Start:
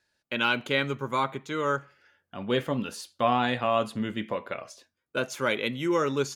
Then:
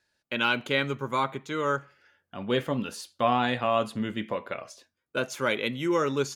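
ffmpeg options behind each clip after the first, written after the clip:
-af anull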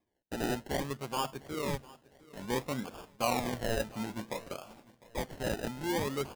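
-af "acrusher=samples=31:mix=1:aa=0.000001:lfo=1:lforange=18.6:lforate=0.58,aecho=1:1:703|1406|2109:0.0841|0.0337|0.0135,volume=-7dB"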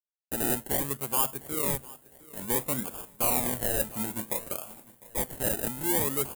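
-af "aeval=exprs='0.0562*(abs(mod(val(0)/0.0562+3,4)-2)-1)':c=same,acrusher=bits=11:mix=0:aa=0.000001,aexciter=amount=4.9:drive=8:freq=7.6k,volume=2dB"

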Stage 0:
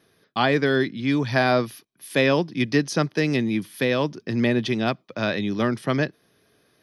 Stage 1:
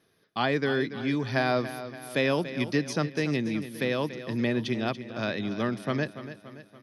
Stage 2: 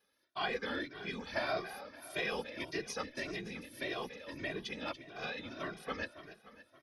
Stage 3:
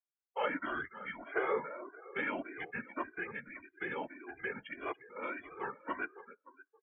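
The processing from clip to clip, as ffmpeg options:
-af "aecho=1:1:286|572|858|1144|1430:0.237|0.123|0.0641|0.0333|0.0173,volume=-6dB"
-filter_complex "[0:a]highpass=f=700:p=1,afftfilt=real='hypot(re,im)*cos(2*PI*random(0))':imag='hypot(re,im)*sin(2*PI*random(1))':win_size=512:overlap=0.75,asplit=2[a][b];[b]adelay=2,afreqshift=1.7[c];[a][c]amix=inputs=2:normalize=1,volume=2.5dB"
-filter_complex "[0:a]highpass=f=250:t=q:w=0.5412,highpass=f=250:t=q:w=1.307,lowpass=f=3.5k:t=q:w=0.5176,lowpass=f=3.5k:t=q:w=0.7071,lowpass=f=3.5k:t=q:w=1.932,afreqshift=-210,acrossover=split=280 2500:gain=0.1 1 0.0891[a][b][c];[a][b][c]amix=inputs=3:normalize=0,afftdn=nr=33:nf=-53,volume=4dB"

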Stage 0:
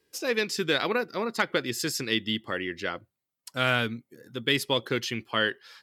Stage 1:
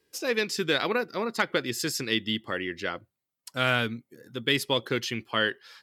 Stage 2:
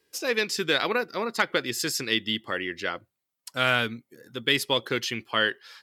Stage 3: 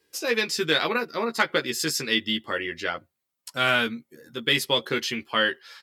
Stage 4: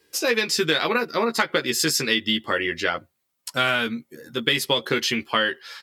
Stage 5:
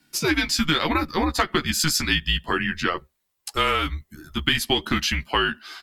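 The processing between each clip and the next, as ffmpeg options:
-af anull
-af "lowshelf=f=370:g=-5.5,volume=2.5dB"
-filter_complex "[0:a]asplit=2[a][b];[b]adelay=13,volume=-4dB[c];[a][c]amix=inputs=2:normalize=0"
-af "acompressor=threshold=-24dB:ratio=5,volume=6.5dB"
-af "afreqshift=-160"

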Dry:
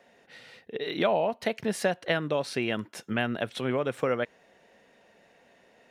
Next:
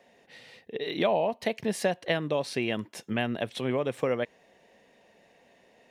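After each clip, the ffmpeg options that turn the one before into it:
-af "equalizer=f=1.4k:w=4.1:g=-8.5"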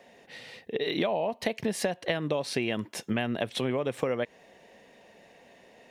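-af "acompressor=threshold=-30dB:ratio=6,volume=5dB"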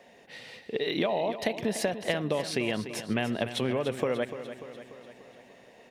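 -af "aecho=1:1:294|588|882|1176|1470|1764:0.266|0.152|0.0864|0.0493|0.0281|0.016"

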